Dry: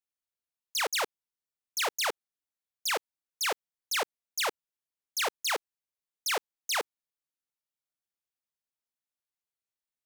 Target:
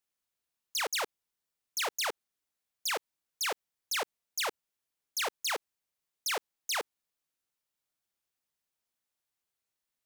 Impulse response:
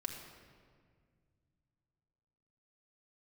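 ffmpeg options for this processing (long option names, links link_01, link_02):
-af "alimiter=level_in=8dB:limit=-24dB:level=0:latency=1,volume=-8dB,volume=5.5dB"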